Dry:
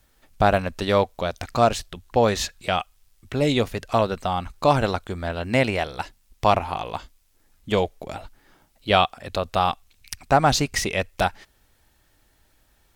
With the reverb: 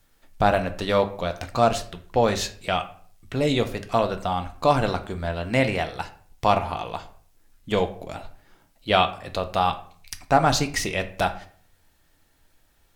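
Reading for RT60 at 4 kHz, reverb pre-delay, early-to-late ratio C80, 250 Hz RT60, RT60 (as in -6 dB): 0.35 s, 4 ms, 17.5 dB, 0.60 s, 0.50 s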